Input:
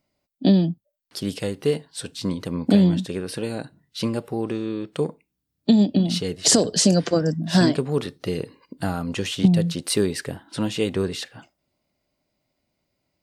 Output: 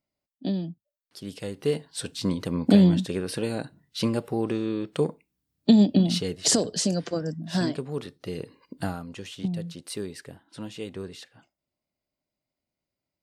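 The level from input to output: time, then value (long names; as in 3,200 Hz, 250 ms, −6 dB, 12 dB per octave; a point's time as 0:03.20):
0:01.19 −11.5 dB
0:01.89 −0.5 dB
0:06.02 −0.5 dB
0:06.92 −8.5 dB
0:08.23 −8.5 dB
0:08.79 −1.5 dB
0:09.09 −12.5 dB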